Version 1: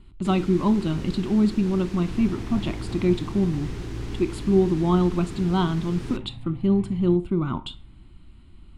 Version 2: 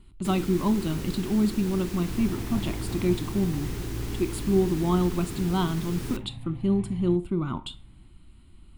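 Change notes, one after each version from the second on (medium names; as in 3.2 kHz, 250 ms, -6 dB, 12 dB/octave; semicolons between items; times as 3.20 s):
speech -3.5 dB; master: remove distance through air 74 m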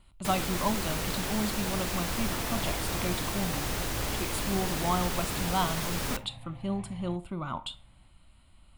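first sound +8.0 dB; master: add resonant low shelf 460 Hz -7 dB, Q 3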